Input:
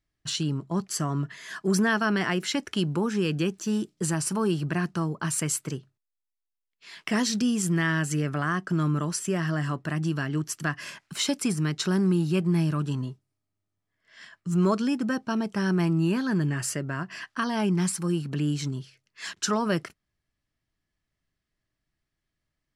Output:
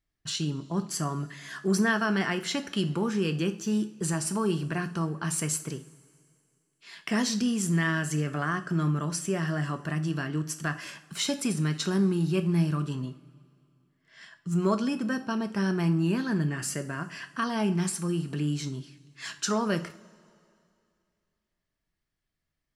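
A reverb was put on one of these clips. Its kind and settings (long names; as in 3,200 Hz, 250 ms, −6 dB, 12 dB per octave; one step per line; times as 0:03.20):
coupled-rooms reverb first 0.4 s, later 2.5 s, from −20 dB, DRR 7.5 dB
level −2.5 dB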